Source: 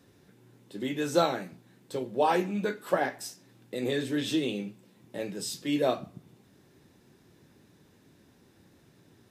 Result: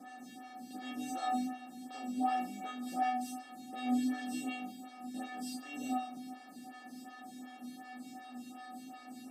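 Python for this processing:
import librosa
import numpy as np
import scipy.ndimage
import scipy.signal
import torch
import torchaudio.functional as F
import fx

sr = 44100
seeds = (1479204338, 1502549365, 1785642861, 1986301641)

y = fx.bin_compress(x, sr, power=0.4)
y = fx.comb_fb(y, sr, f0_hz=250.0, decay_s=0.54, harmonics='odd', damping=0.0, mix_pct=100)
y = fx.stagger_phaser(y, sr, hz=2.7)
y = y * 10.0 ** (7.5 / 20.0)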